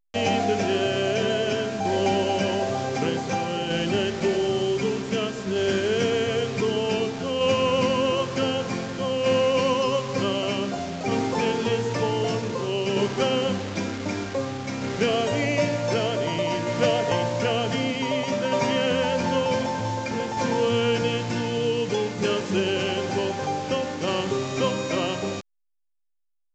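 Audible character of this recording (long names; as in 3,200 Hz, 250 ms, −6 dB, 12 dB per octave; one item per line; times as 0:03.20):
a quantiser's noise floor 6 bits, dither none
tremolo saw down 0.54 Hz, depth 35%
A-law companding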